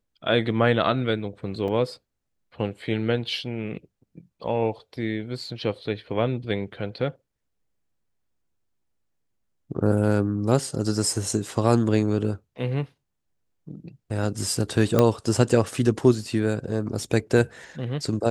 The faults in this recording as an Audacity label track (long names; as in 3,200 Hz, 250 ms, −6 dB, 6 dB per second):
1.680000	1.680000	drop-out 2.2 ms
14.990000	14.990000	click −6 dBFS